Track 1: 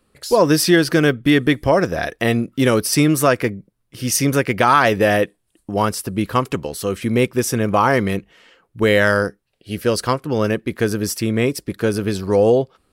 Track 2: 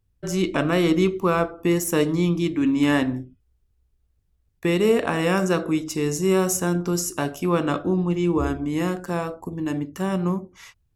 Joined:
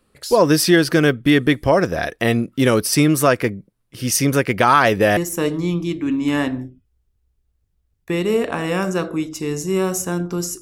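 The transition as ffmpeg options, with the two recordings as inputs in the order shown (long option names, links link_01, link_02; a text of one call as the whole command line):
ffmpeg -i cue0.wav -i cue1.wav -filter_complex "[0:a]apad=whole_dur=10.61,atrim=end=10.61,atrim=end=5.172[link_01];[1:a]atrim=start=1.718:end=7.16[link_02];[link_01][link_02]acrossfade=duration=0.004:curve1=hsin:curve2=hsin" out.wav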